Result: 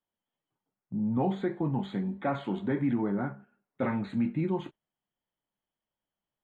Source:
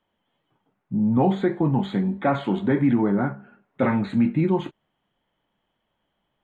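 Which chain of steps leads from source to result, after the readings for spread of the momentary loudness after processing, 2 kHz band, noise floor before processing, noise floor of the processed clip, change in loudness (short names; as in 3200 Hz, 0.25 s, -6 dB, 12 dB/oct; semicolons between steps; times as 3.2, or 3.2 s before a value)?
7 LU, -8.5 dB, -76 dBFS, under -85 dBFS, -8.5 dB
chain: gate -39 dBFS, range -9 dB; gain -8.5 dB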